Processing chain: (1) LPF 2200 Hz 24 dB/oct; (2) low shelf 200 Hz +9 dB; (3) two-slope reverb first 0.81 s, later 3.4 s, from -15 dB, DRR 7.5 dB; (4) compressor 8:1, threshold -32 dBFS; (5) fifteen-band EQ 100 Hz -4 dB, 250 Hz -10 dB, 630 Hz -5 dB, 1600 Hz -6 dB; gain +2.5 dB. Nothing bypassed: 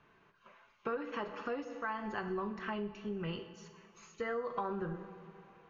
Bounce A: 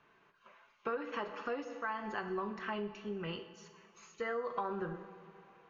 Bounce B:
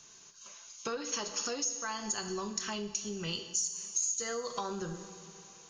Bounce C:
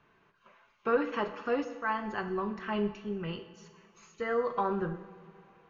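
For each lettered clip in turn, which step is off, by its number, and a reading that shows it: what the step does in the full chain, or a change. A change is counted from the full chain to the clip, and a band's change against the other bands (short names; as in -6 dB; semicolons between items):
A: 2, 125 Hz band -4.0 dB; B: 1, 4 kHz band +15.0 dB; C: 4, mean gain reduction 3.5 dB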